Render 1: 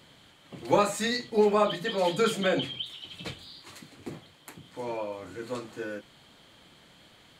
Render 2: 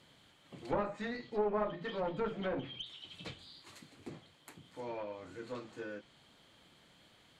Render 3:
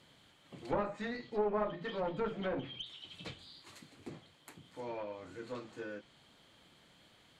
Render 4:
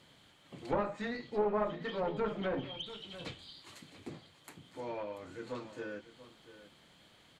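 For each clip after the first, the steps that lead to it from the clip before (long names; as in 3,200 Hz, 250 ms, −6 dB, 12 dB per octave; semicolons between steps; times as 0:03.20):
asymmetric clip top −29.5 dBFS; treble cut that deepens with the level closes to 1,400 Hz, closed at −25 dBFS; level −7.5 dB
no processing that can be heard
single-tap delay 687 ms −15 dB; level +1.5 dB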